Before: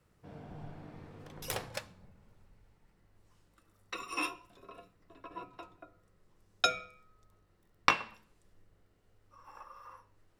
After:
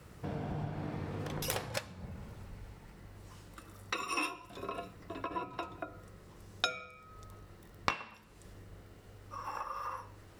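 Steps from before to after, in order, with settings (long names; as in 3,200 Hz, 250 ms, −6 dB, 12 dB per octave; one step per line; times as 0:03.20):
downward compressor 3 to 1, threshold −53 dBFS, peak gain reduction 24.5 dB
high-pass filter 48 Hz
low-shelf EQ 70 Hz +5.5 dB
level +15.5 dB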